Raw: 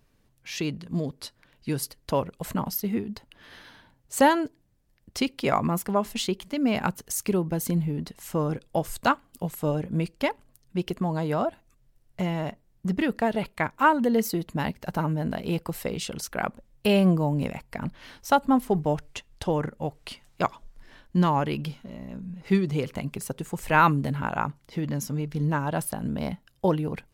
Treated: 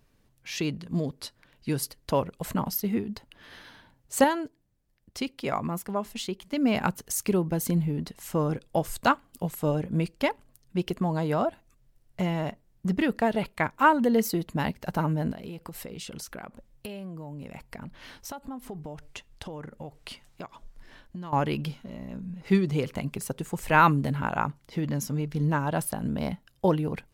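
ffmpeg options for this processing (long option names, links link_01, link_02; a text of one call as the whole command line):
ffmpeg -i in.wav -filter_complex "[0:a]asettb=1/sr,asplit=3[link_01][link_02][link_03];[link_01]atrim=end=15.324[link_04];[link_02]atrim=start=15.32:end=21.33,asetpts=PTS-STARTPTS,afade=type=in:duration=0.004:curve=qsin,afade=type=out:start_time=6.006:duration=0.004:curve=qsin,acompressor=threshold=-35dB:ratio=10:attack=3.2:release=140:knee=1:detection=peak[link_05];[link_03]atrim=start=21.326[link_06];[link_04][link_05]acrossfade=duration=0.004:curve1=hsin:curve2=qsin[link_07];[link_07][link_06]acrossfade=duration=0.004:curve1=qsin:curve2=hsin,asplit=3[link_08][link_09][link_10];[link_08]atrim=end=4.242[link_11];[link_09]atrim=start=4.238:end=6.522,asetpts=PTS-STARTPTS,volume=-5.5dB[link_12];[link_10]atrim=start=6.518[link_13];[link_11][link_12]acrossfade=duration=0.004:curve1=hsin:curve2=hsin[link_14];[link_14][link_13]acrossfade=duration=0.004:curve1=hsin:curve2=hsin" out.wav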